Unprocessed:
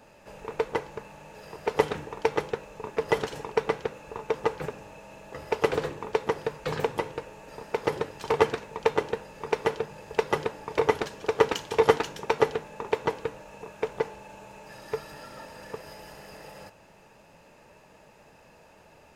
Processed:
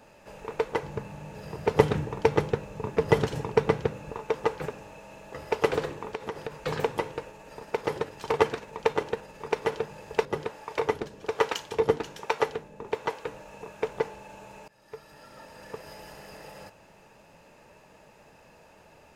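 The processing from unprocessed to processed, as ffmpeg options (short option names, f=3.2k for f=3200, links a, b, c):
-filter_complex "[0:a]asettb=1/sr,asplit=3[a][b][c];[a]atrim=end=0.834[d];[b]atrim=start=0.83:end=4.12,asetpts=PTS-STARTPTS,afade=t=in:d=0.004:c=qsin,afade=t=out:st=3.286:d=0.004:c=qsin,equalizer=f=110:w=0.53:g=13.5[e];[c]atrim=start=4.116[f];[d][e]acrossfade=d=0.004:c1=hsin:c2=qsin[g];[g][f]acrossfade=d=0.004:c1=qsin:c2=hsin,asettb=1/sr,asplit=3[h][i][j];[h]atrim=end=5.854[k];[i]atrim=start=5.85:end=6.52,asetpts=PTS-STARTPTS,afade=t=in:d=0.004:c=qsin,afade=t=out:st=0.666:d=0.004:c=qsin,acompressor=threshold=-29dB:ratio=6:attack=3.2:release=140:knee=1:detection=peak[l];[j]atrim=start=6.516[m];[k][l]acrossfade=d=0.004:c1=hsin:c2=qsin[n];[n][m]acrossfade=d=0.004:c1=qsin:c2=hsin,asettb=1/sr,asplit=3[o][p][q];[o]atrim=end=7.304[r];[p]atrim=start=7.3:end=9.72,asetpts=PTS-STARTPTS,afade=t=in:d=0.004:c=qsin,afade=t=out:st=2.416:d=0.004:c=qsin,tremolo=f=18:d=0.3[s];[q]atrim=start=9.716[t];[r][s]acrossfade=d=0.004:c1=hsin:c2=qsin[u];[u][t]acrossfade=d=0.004:c1=qsin:c2=hsin,asettb=1/sr,asplit=3[v][w][x];[v]atrim=end=10.254[y];[w]atrim=start=10.25:end=13.27,asetpts=PTS-STARTPTS,afade=t=in:d=0.004:c=qsin,afade=t=out:st=3.016:d=0.004:c=qsin,acrossover=split=490[z][aa];[z]aeval=exprs='val(0)*(1-0.7/2+0.7/2*cos(2*PI*1.2*n/s))':c=same[ab];[aa]aeval=exprs='val(0)*(1-0.7/2-0.7/2*cos(2*PI*1.2*n/s))':c=same[ac];[ab][ac]amix=inputs=2:normalize=0[ad];[x]atrim=start=13.266[ae];[y][ad]acrossfade=d=0.004:c1=hsin:c2=qsin[af];[af][ae]acrossfade=d=0.004:c1=qsin:c2=hsin,asplit=2[ag][ah];[ag]atrim=end=14.68,asetpts=PTS-STARTPTS,afade=t=out:st=14.676:d=0.004:c=hsin:silence=0.0891251[ai];[ah]atrim=start=14.68,asetpts=PTS-STARTPTS,afade=t=in:d=1.29:silence=0.0891251[aj];[ai][aj]concat=n=2:v=0:a=1"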